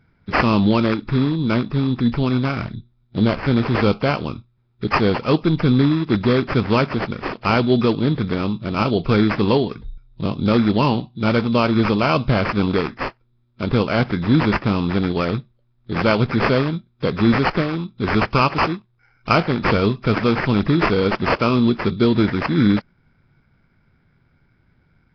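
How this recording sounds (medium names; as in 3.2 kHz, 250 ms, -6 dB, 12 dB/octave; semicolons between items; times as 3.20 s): aliases and images of a low sample rate 3.7 kHz, jitter 0%; Nellymoser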